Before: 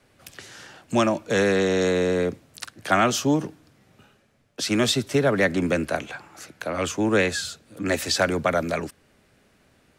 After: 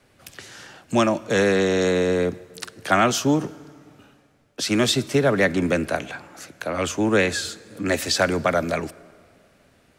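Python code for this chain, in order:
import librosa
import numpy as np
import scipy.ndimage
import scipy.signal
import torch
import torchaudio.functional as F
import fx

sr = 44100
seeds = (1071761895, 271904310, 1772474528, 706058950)

y = fx.rev_plate(x, sr, seeds[0], rt60_s=2.2, hf_ratio=0.75, predelay_ms=0, drr_db=19.5)
y = y * 10.0 ** (1.5 / 20.0)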